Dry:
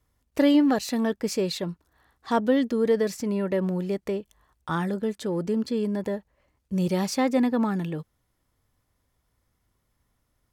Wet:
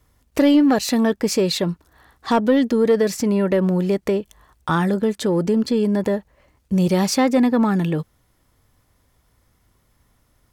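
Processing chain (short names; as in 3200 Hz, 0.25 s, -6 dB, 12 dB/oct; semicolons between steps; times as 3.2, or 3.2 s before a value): in parallel at +2.5 dB: compressor, threshold -29 dBFS, peak gain reduction 13 dB; on the sum: soft clip -9.5 dBFS, distortion -24 dB; gain +3.5 dB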